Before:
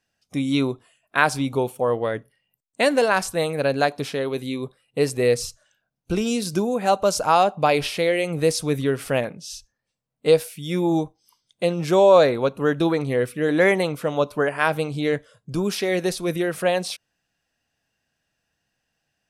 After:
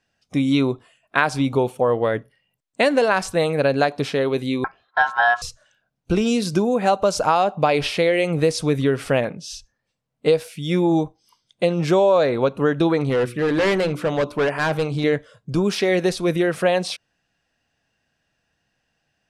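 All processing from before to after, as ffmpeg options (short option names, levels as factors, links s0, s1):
-filter_complex "[0:a]asettb=1/sr,asplit=3[s0][s1][s2];[s0]atrim=end=4.644[s3];[s1]atrim=start=4.64:end=5.42,asetpts=PTS-STARTPTS,afade=t=in:d=0.004:c=qsin,afade=t=out:st=0.776:d=0.004:c=qsin,lowpass=2200,acontrast=32,aeval=exprs='val(0)*sin(2*PI*1200*n/s)':c=same[s4];[s2]atrim=start=5.416[s5];[s3][s4]acrossfade=d=0.004:c1=hsin:c2=qsin[s6];[s6][s5]acrossfade=d=0.004:c1=qsin:c2=hsin,asettb=1/sr,asplit=3[s7][s8][s9];[s7]atrim=end=13.094[s10];[s8]atrim=start=13.09:end=15.04,asetpts=PTS-STARTPTS,afade=t=in:d=0.004:c=qsin,afade=t=out:st=1.946:d=0.004:c=qsin,bandreject=f=60:t=h:w=6,bandreject=f=120:t=h:w=6,bandreject=f=180:t=h:w=6,bandreject=f=240:t=h:w=6,bandreject=f=300:t=h:w=6,bandreject=f=360:t=h:w=6,asoftclip=type=hard:threshold=0.0891[s11];[s9]atrim=start=15.036[s12];[s10][s11]acrossfade=d=0.004:c1=hsin:c2=qsin[s13];[s13][s12]acrossfade=d=0.004:c1=qsin:c2=hsin,lowpass=12000,highshelf=f=8000:g=-11.5,acompressor=threshold=0.112:ratio=4,volume=1.78"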